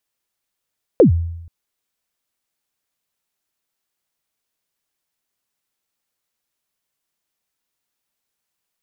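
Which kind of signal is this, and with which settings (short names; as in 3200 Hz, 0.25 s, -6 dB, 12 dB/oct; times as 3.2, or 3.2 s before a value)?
kick drum length 0.48 s, from 570 Hz, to 84 Hz, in 0.113 s, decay 0.87 s, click off, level -4 dB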